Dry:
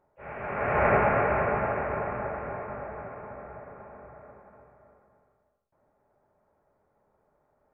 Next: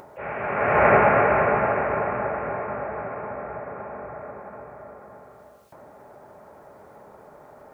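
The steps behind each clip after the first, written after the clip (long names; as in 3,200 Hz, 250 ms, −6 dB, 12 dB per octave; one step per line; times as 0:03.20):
high-pass filter 150 Hz 6 dB per octave
in parallel at +1 dB: upward compression, threshold −30 dBFS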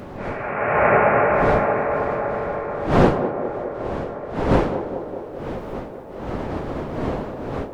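wind on the microphone 550 Hz −26 dBFS
feedback echo with a band-pass in the loop 204 ms, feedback 75%, band-pass 490 Hz, level −7 dB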